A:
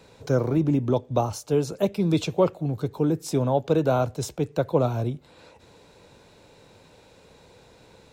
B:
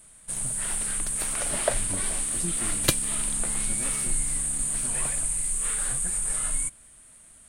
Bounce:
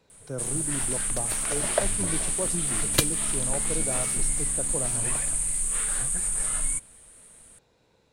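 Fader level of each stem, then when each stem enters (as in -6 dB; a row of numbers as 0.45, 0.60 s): -12.5, +0.5 dB; 0.00, 0.10 s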